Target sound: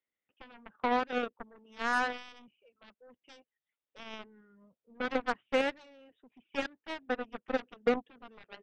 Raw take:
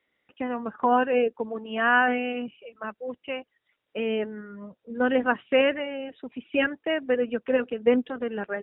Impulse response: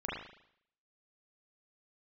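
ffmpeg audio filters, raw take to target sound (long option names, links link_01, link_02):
-filter_complex "[0:a]aeval=exprs='0.376*(cos(1*acos(clip(val(0)/0.376,-1,1)))-cos(1*PI/2))+0.00668*(cos(4*acos(clip(val(0)/0.376,-1,1)))-cos(4*PI/2))+0.0668*(cos(7*acos(clip(val(0)/0.376,-1,1)))-cos(7*PI/2))':channel_layout=same,acrossover=split=2800[link_01][link_02];[link_02]acompressor=threshold=-37dB:ratio=4:attack=1:release=60[link_03];[link_01][link_03]amix=inputs=2:normalize=0,volume=-7.5dB"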